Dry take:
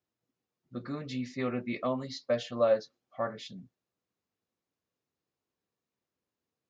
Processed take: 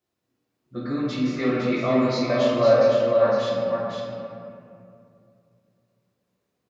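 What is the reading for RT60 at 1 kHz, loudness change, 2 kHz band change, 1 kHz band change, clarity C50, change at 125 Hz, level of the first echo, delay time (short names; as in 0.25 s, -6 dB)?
2.4 s, +11.0 dB, +11.0 dB, +11.0 dB, -3.0 dB, +11.5 dB, -5.5 dB, 0.508 s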